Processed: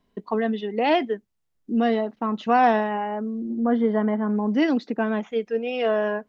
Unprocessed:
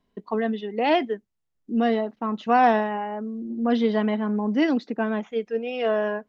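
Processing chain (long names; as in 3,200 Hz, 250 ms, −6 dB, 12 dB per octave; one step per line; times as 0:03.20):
in parallel at −3 dB: downward compressor, threshold −27 dBFS, peak gain reduction 12.5 dB
0:03.60–0:04.30: on the sum: Savitzky-Golay smoothing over 41 samples
level −1.5 dB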